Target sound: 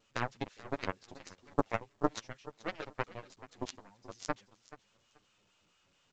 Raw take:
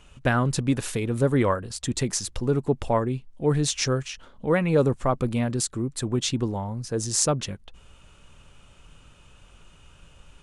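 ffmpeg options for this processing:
-filter_complex "[0:a]acrossover=split=3300[a][b];[a]acrusher=bits=6:mode=log:mix=0:aa=0.000001[c];[b]acontrast=65[d];[c][d]amix=inputs=2:normalize=0,acrossover=split=720[e][f];[e]aeval=exprs='val(0)*(1-0.7/2+0.7/2*cos(2*PI*2.6*n/s))':c=same[g];[f]aeval=exprs='val(0)*(1-0.7/2-0.7/2*cos(2*PI*2.6*n/s))':c=same[h];[g][h]amix=inputs=2:normalize=0,adynamicequalizer=threshold=0.00501:dfrequency=2000:dqfactor=2.5:tfrequency=2000:tqfactor=2.5:attack=5:release=100:ratio=0.375:range=1.5:mode=boostabove:tftype=bell,atempo=1.7,highpass=180,lowpass=4.3k,aeval=exprs='0.266*(cos(1*acos(clip(val(0)/0.266,-1,1)))-cos(1*PI/2))+0.0944*(cos(3*acos(clip(val(0)/0.266,-1,1)))-cos(3*PI/2))':c=same,asplit=2[i][j];[j]aecho=0:1:431|862:0.133|0.0253[k];[i][k]amix=inputs=2:normalize=0,flanger=delay=8.9:depth=2.4:regen=2:speed=0.4:shape=triangular,volume=5dB" -ar 16000 -c:a pcm_alaw

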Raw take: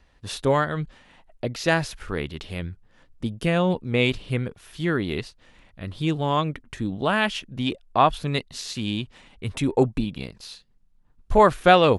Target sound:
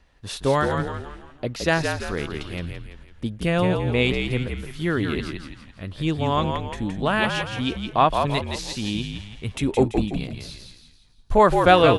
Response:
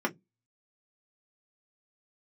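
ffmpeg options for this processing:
-filter_complex "[0:a]asplit=6[a][b][c][d][e][f];[b]adelay=168,afreqshift=-54,volume=-5.5dB[g];[c]adelay=336,afreqshift=-108,volume=-12.6dB[h];[d]adelay=504,afreqshift=-162,volume=-19.8dB[i];[e]adelay=672,afreqshift=-216,volume=-26.9dB[j];[f]adelay=840,afreqshift=-270,volume=-34dB[k];[a][g][h][i][j][k]amix=inputs=6:normalize=0"

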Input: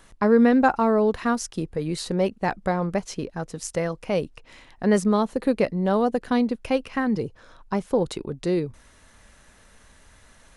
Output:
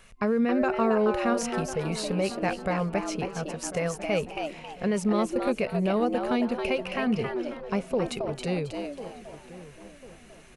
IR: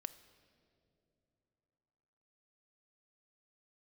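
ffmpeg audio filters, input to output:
-filter_complex "[0:a]superequalizer=6b=0.282:9b=0.631:12b=2.24,asplit=2[a][b];[b]adelay=1046,lowpass=f=1.6k:p=1,volume=-16dB,asplit=2[c][d];[d]adelay=1046,lowpass=f=1.6k:p=1,volume=0.4,asplit=2[e][f];[f]adelay=1046,lowpass=f=1.6k:p=1,volume=0.4,asplit=2[g][h];[h]adelay=1046,lowpass=f=1.6k:p=1,volume=0.4[i];[c][e][g][i]amix=inputs=4:normalize=0[j];[a][j]amix=inputs=2:normalize=0,alimiter=limit=-15dB:level=0:latency=1:release=95,asplit=2[k][l];[l]asplit=4[m][n][o][p];[m]adelay=271,afreqshift=140,volume=-6dB[q];[n]adelay=542,afreqshift=280,volume=-16.2dB[r];[o]adelay=813,afreqshift=420,volume=-26.3dB[s];[p]adelay=1084,afreqshift=560,volume=-36.5dB[t];[q][r][s][t]amix=inputs=4:normalize=0[u];[k][u]amix=inputs=2:normalize=0,volume=-2dB"

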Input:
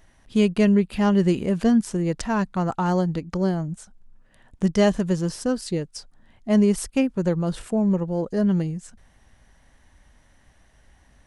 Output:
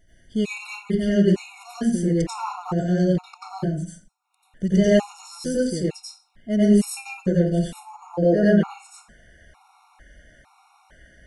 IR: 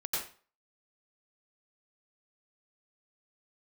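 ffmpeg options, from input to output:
-filter_complex "[0:a]asetnsamples=n=441:p=0,asendcmd='8.14 equalizer g 8.5',equalizer=f=1.1k:t=o:w=2.5:g=-4[a];[1:a]atrim=start_sample=2205[b];[a][b]afir=irnorm=-1:irlink=0,afftfilt=real='re*gt(sin(2*PI*1.1*pts/sr)*(1-2*mod(floor(b*sr/1024/720),2)),0)':imag='im*gt(sin(2*PI*1.1*pts/sr)*(1-2*mod(floor(b*sr/1024/720),2)),0)':win_size=1024:overlap=0.75"

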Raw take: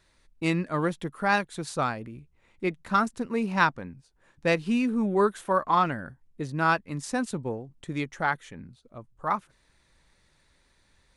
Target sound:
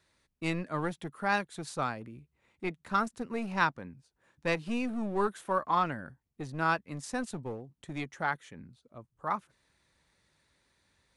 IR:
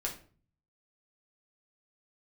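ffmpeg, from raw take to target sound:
-filter_complex "[0:a]highpass=70,acrossover=split=580[a][b];[a]aeval=exprs='clip(val(0),-1,0.0251)':c=same[c];[c][b]amix=inputs=2:normalize=0,volume=-5dB"

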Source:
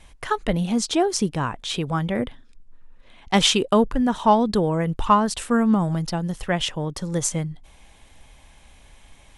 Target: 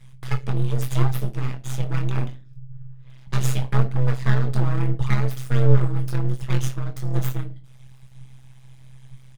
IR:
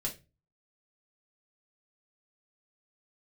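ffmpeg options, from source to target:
-filter_complex "[0:a]alimiter=limit=-10.5dB:level=0:latency=1:release=386,asplit=2[a][b];[b]adelay=23,volume=-7dB[c];[a][c]amix=inputs=2:normalize=0,aeval=exprs='abs(val(0))':c=same,asplit=2[d][e];[1:a]atrim=start_sample=2205[f];[e][f]afir=irnorm=-1:irlink=0,volume=-1dB[g];[d][g]amix=inputs=2:normalize=0,tremolo=f=130:d=0.857,volume=-7.5dB"

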